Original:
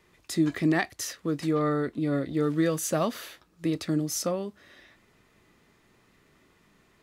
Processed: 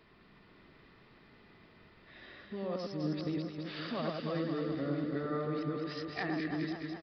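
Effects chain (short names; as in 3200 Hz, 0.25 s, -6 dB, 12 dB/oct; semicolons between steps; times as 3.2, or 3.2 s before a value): whole clip reversed; compressor 2.5:1, threshold -40 dBFS, peak gain reduction 14 dB; on a send: echo with dull and thin repeats by turns 0.105 s, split 1700 Hz, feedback 83%, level -2.5 dB; on the sum: downsampling 11025 Hz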